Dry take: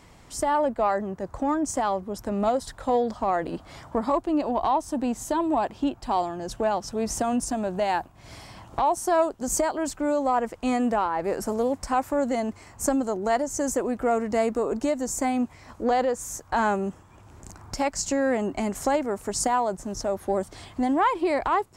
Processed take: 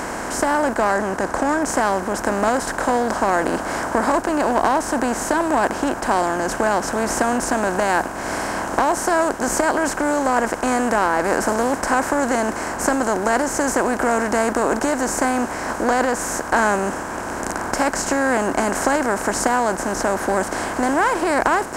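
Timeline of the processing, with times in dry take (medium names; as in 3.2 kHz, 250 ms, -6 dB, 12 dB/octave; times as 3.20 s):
0.91–1.62 s: low-pass 9.7 kHz
whole clip: spectral levelling over time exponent 0.4; peaking EQ 1.6 kHz +9.5 dB 0.33 oct; trim -1 dB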